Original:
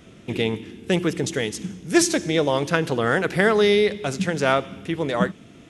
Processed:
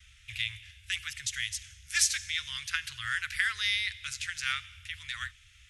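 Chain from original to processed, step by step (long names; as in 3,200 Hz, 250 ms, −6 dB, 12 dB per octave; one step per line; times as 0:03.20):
noise gate with hold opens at −43 dBFS
inverse Chebyshev band-stop filter 170–800 Hz, stop band 50 dB
low-shelf EQ 100 Hz +5.5 dB
level −2.5 dB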